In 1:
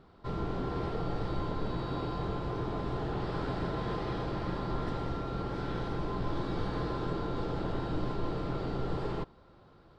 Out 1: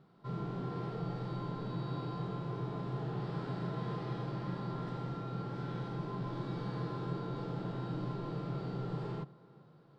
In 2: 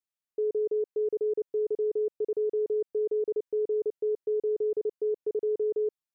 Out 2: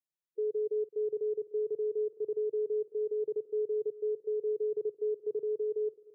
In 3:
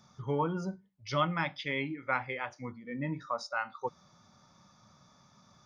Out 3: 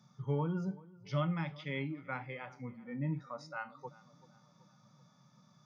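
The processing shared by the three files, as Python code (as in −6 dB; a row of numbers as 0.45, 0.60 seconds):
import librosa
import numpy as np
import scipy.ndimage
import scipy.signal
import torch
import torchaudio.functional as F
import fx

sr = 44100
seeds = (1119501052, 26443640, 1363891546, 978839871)

y = fx.low_shelf_res(x, sr, hz=100.0, db=-11.0, q=3.0)
y = fx.echo_tape(y, sr, ms=382, feedback_pct=60, wet_db=-20.0, lp_hz=1500.0, drive_db=9.0, wow_cents=21)
y = fx.hpss(y, sr, part='percussive', gain_db=-8)
y = y * librosa.db_to_amplitude(-4.5)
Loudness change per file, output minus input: −4.0, −4.0, −4.0 LU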